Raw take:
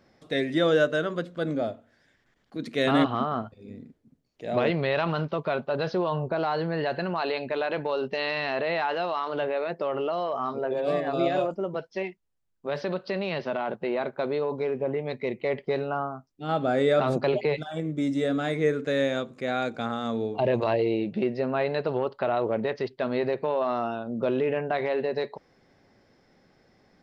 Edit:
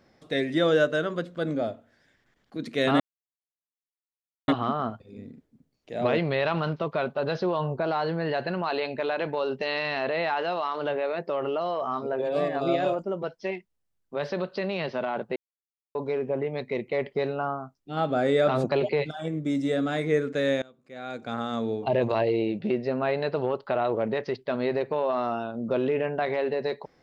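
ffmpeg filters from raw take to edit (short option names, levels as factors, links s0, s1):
-filter_complex "[0:a]asplit=5[s0][s1][s2][s3][s4];[s0]atrim=end=3,asetpts=PTS-STARTPTS,afade=t=out:st=2.996:d=0.004:c=hsin,apad=pad_dur=1.48[s5];[s1]atrim=start=3:end=13.88,asetpts=PTS-STARTPTS,afade=t=in:d=0.004:c=hsin,afade=t=out:st=10.876:d=0.004:c=hsin[s6];[s2]atrim=start=13.88:end=14.47,asetpts=PTS-STARTPTS,volume=0[s7];[s3]atrim=start=14.47:end=19.14,asetpts=PTS-STARTPTS,afade=t=in:d=0.004:c=hsin,afade=t=out:st=4.666:d=0.004:c=hsin:silence=0.0707946[s8];[s4]atrim=start=19.14,asetpts=PTS-STARTPTS,afade=t=in:d=0.79:c=qua:silence=0.0707946[s9];[s5][s6][s7][s8][s9]concat=n=5:v=0:a=1"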